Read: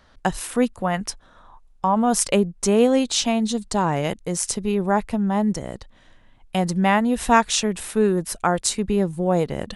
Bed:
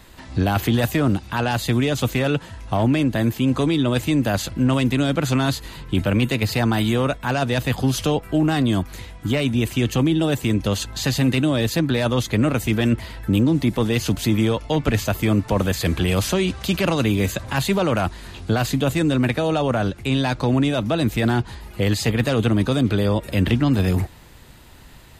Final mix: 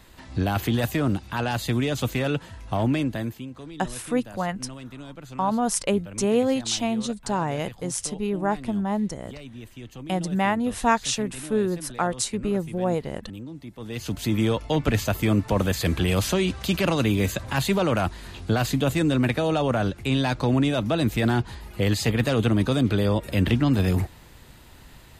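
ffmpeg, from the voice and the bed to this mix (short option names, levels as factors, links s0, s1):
-filter_complex "[0:a]adelay=3550,volume=0.596[s0];[1:a]volume=4.73,afade=t=out:st=2.95:d=0.55:silence=0.158489,afade=t=in:st=13.77:d=0.74:silence=0.125893[s1];[s0][s1]amix=inputs=2:normalize=0"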